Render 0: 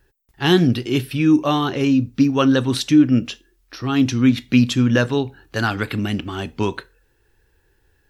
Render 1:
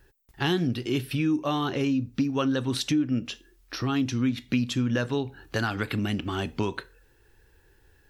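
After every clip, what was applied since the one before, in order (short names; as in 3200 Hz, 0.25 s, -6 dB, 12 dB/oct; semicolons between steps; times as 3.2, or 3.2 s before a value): compressor 3:1, threshold -28 dBFS, peak gain reduction 14.5 dB; gain +1.5 dB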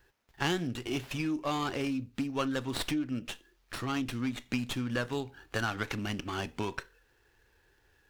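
low shelf 490 Hz -8.5 dB; running maximum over 5 samples; gain -1.5 dB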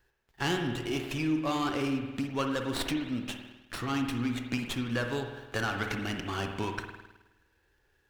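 spring tank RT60 1.3 s, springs 51 ms, chirp 60 ms, DRR 4.5 dB; sample leveller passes 1; gain -3 dB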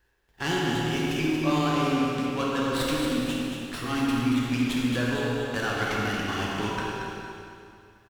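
on a send: feedback echo 0.229 s, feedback 40%, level -6.5 dB; on the sum: plate-style reverb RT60 2.3 s, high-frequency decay 0.9×, DRR -2.5 dB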